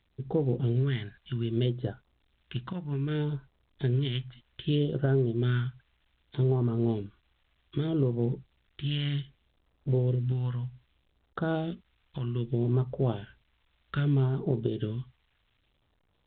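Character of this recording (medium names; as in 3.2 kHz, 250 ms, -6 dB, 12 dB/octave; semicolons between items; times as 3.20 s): a quantiser's noise floor 12-bit, dither triangular; phasing stages 2, 0.64 Hz, lowest notch 400–2300 Hz; A-law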